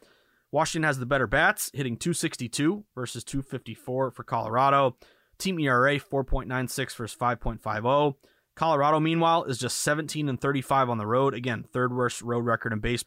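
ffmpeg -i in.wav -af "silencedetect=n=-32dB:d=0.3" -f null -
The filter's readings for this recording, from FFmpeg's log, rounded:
silence_start: 0.00
silence_end: 0.53 | silence_duration: 0.53
silence_start: 4.90
silence_end: 5.40 | silence_duration: 0.50
silence_start: 8.11
silence_end: 8.57 | silence_duration: 0.46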